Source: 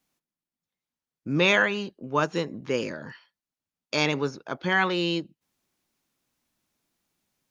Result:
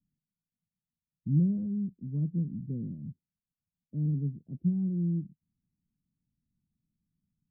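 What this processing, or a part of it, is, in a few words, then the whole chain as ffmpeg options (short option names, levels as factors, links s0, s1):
the neighbour's flat through the wall: -af "lowpass=f=190:w=0.5412,lowpass=f=190:w=1.3066,equalizer=f=190:t=o:w=0.77:g=3,volume=1.68"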